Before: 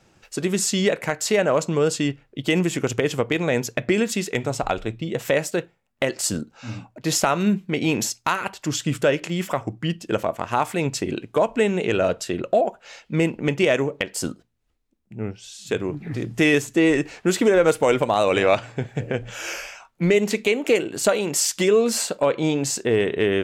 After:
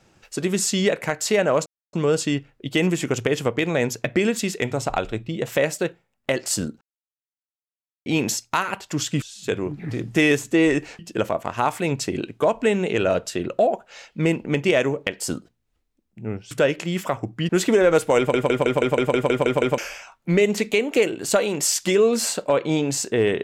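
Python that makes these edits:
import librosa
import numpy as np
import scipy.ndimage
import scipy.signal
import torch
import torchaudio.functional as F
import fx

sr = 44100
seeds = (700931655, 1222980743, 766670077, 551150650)

y = fx.edit(x, sr, fx.insert_silence(at_s=1.66, length_s=0.27),
    fx.silence(start_s=6.54, length_s=1.25),
    fx.swap(start_s=8.95, length_s=0.98, other_s=15.45, other_length_s=1.77),
    fx.stutter_over(start_s=17.91, slice_s=0.16, count=10), tone=tone)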